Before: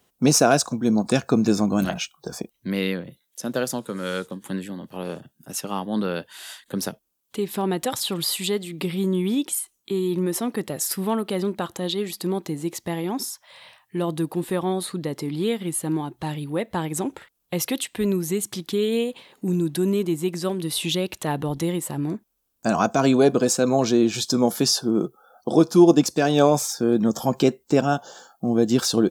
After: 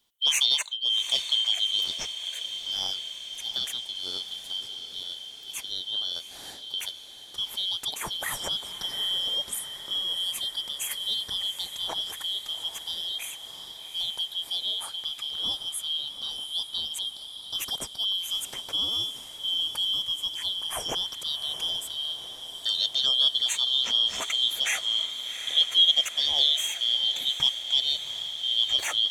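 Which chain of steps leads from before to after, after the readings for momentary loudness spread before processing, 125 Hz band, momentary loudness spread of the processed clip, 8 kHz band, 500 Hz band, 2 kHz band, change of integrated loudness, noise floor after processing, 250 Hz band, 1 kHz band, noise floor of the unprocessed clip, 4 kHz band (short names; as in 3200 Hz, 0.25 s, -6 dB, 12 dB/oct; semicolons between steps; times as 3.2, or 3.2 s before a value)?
13 LU, under -25 dB, 11 LU, -6.0 dB, -25.0 dB, -4.5 dB, -2.5 dB, -43 dBFS, -33.0 dB, -15.0 dB, -71 dBFS, +10.0 dB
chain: four-band scrambler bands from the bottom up 3412; diffused feedback echo 0.762 s, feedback 70%, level -11 dB; gain -6.5 dB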